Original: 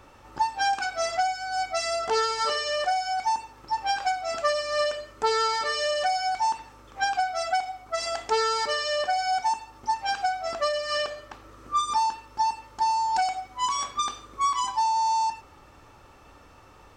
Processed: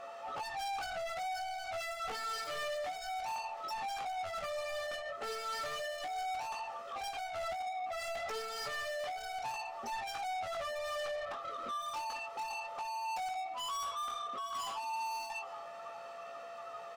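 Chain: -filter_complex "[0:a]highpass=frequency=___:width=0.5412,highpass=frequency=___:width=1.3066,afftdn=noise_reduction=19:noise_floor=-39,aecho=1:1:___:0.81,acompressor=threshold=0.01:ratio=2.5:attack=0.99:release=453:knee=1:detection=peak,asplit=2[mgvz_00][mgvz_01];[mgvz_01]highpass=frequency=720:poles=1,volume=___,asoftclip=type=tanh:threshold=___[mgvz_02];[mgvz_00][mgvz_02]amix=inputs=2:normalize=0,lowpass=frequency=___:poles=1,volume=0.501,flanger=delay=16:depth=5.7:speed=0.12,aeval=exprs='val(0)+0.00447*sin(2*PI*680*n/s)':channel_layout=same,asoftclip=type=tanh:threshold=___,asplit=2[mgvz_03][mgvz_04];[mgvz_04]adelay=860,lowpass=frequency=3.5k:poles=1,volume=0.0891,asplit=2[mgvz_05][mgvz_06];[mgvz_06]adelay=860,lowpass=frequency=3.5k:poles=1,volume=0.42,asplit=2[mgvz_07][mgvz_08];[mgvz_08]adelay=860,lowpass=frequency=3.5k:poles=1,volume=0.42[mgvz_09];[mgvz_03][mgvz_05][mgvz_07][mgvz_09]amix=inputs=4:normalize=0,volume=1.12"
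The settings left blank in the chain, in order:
160, 160, 1.6, 31.6, 0.0447, 3.9k, 0.015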